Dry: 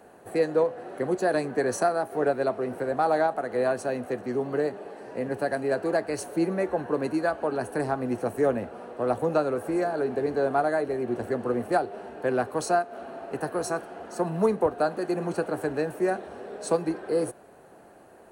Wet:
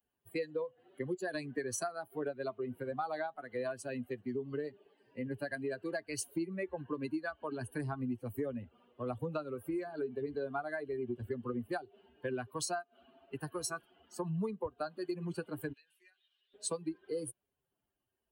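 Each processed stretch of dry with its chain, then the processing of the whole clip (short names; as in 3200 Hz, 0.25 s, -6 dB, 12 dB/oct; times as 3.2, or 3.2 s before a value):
15.73–16.54 band-pass 4200 Hz, Q 0.86 + compressor 10:1, threshold -43 dBFS
whole clip: per-bin expansion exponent 2; bell 680 Hz -8.5 dB 1.8 oct; compressor, threshold -40 dBFS; gain +6 dB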